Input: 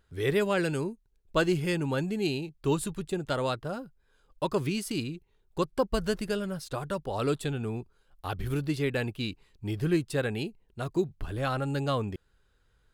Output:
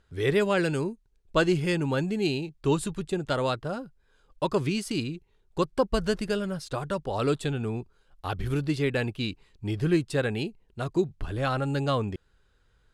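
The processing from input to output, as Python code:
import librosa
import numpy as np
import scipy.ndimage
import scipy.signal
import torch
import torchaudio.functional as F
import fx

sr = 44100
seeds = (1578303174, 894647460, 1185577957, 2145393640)

y = scipy.signal.sosfilt(scipy.signal.butter(2, 9100.0, 'lowpass', fs=sr, output='sos'), x)
y = y * librosa.db_to_amplitude(2.5)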